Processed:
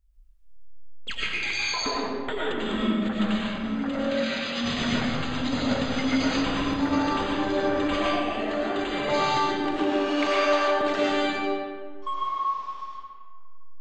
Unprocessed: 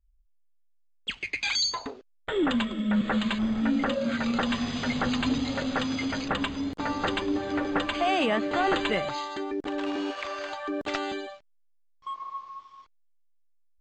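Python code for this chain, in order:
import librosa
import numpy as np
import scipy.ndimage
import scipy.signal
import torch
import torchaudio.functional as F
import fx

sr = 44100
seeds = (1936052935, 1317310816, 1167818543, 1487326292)

y = fx.weighting(x, sr, curve='D', at=(4.11, 4.61))
y = fx.over_compress(y, sr, threshold_db=-33.0, ratio=-1.0)
y = fx.rev_freeverb(y, sr, rt60_s=1.7, hf_ratio=0.6, predelay_ms=65, drr_db=-6.0)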